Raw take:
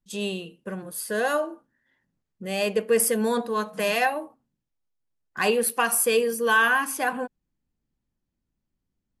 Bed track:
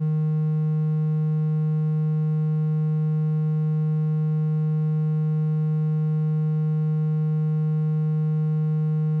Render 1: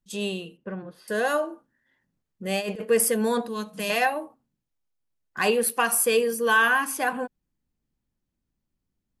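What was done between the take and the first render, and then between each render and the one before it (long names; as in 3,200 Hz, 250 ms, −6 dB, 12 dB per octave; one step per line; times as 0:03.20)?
0:00.57–0:01.08: high-frequency loss of the air 290 metres
0:02.45–0:02.85: compressor whose output falls as the input rises −27 dBFS, ratio −0.5
0:03.48–0:03.90: flat-topped bell 960 Hz −8.5 dB 2.5 octaves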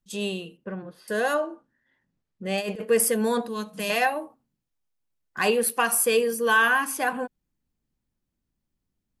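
0:01.34–0:02.58: high-frequency loss of the air 63 metres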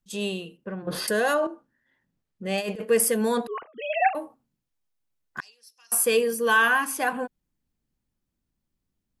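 0:00.87–0:01.47: envelope flattener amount 70%
0:03.47–0:04.15: three sine waves on the formant tracks
0:05.40–0:05.92: resonant band-pass 5,400 Hz, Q 18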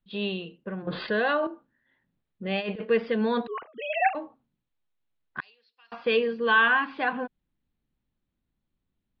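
dynamic equaliser 580 Hz, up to −3 dB, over −36 dBFS, Q 1.2
Butterworth low-pass 4,200 Hz 72 dB per octave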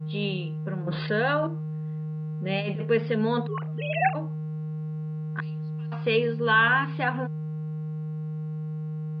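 mix in bed track −10 dB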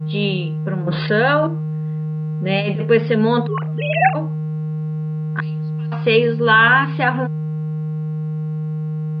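level +9 dB
brickwall limiter −3 dBFS, peak gain reduction 2 dB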